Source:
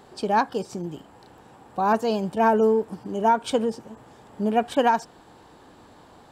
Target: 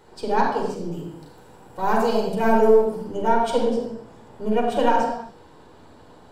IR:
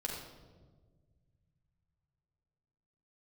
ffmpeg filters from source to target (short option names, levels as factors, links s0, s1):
-filter_complex "[0:a]aeval=exprs='if(lt(val(0),0),0.708*val(0),val(0))':c=same,asettb=1/sr,asplit=3[s0][s1][s2];[s0]atrim=end=0.924[s3];[s1]atrim=start=0.92:end=3.06,asetpts=PTS-STARTPTS,afade=t=in:d=0.004:c=qsin,afade=t=out:st=2.136:d=0.004:c=qsin,highshelf=f=7300:g=11.5[s4];[s2]atrim=start=3.056[s5];[s3][s4]acrossfade=d=0.004:c1=hsin:c2=qsin[s6];[s6][s5]acrossfade=d=0.004:c1=qsin:c2=hsin[s7];[1:a]atrim=start_sample=2205,afade=t=out:st=0.4:d=0.01,atrim=end_sample=18081[s8];[s7][s8]afir=irnorm=-1:irlink=0"